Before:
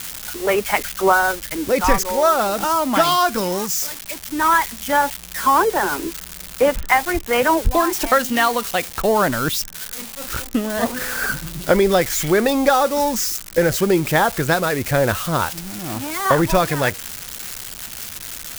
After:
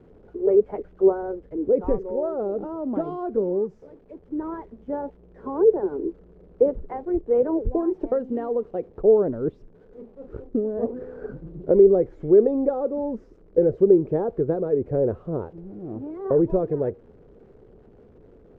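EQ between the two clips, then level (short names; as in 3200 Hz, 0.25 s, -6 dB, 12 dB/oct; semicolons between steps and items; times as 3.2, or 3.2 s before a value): synth low-pass 430 Hz, resonance Q 4.8; -8.5 dB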